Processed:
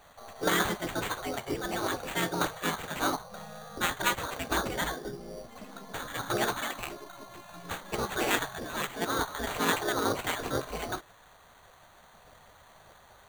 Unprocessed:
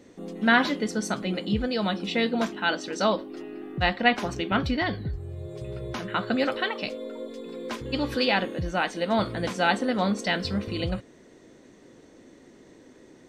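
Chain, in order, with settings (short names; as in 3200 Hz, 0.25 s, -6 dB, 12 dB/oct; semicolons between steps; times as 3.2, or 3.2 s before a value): band shelf 2900 Hz -14 dB 1.3 oct; spectral gate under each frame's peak -15 dB weak; sample-rate reducer 5200 Hz, jitter 0%; gain +8 dB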